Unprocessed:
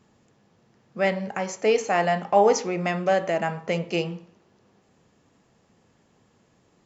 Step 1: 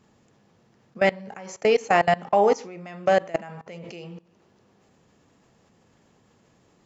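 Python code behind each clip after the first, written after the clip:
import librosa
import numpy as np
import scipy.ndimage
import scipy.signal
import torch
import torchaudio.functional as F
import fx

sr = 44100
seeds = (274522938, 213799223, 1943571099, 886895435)

y = fx.level_steps(x, sr, step_db=22)
y = y * 10.0 ** (5.0 / 20.0)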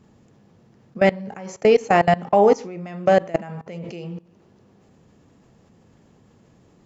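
y = fx.low_shelf(x, sr, hz=480.0, db=9.0)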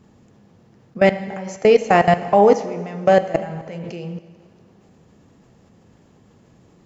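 y = fx.rev_plate(x, sr, seeds[0], rt60_s=1.8, hf_ratio=1.0, predelay_ms=0, drr_db=11.5)
y = y * 10.0 ** (2.0 / 20.0)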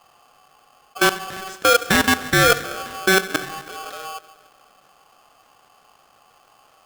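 y = x * np.sign(np.sin(2.0 * np.pi * 950.0 * np.arange(len(x)) / sr))
y = y * 10.0 ** (-3.0 / 20.0)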